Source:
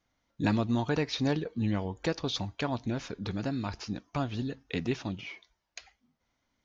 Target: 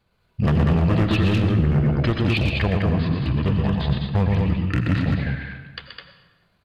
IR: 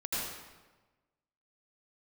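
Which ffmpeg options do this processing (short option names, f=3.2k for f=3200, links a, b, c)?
-filter_complex "[0:a]equalizer=f=150:t=o:w=1:g=7.5,asplit=2[a][b];[b]aecho=0:1:119.5|209.9:0.562|0.631[c];[a][c]amix=inputs=2:normalize=0,volume=23dB,asoftclip=hard,volume=-23dB,asetrate=31183,aresample=44100,atempo=1.41421,asplit=2[d][e];[1:a]atrim=start_sample=2205,asetrate=42336,aresample=44100[f];[e][f]afir=irnorm=-1:irlink=0,volume=-13dB[g];[d][g]amix=inputs=2:normalize=0,volume=7dB"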